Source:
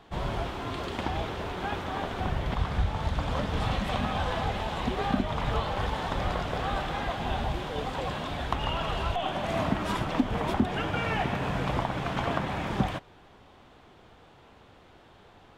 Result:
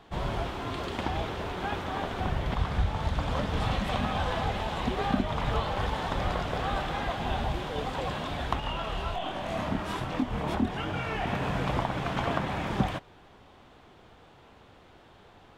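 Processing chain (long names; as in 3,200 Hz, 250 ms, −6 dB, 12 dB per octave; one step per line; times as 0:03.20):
0:08.60–0:11.27: multi-voice chorus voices 2, 1.3 Hz, delay 25 ms, depth 3 ms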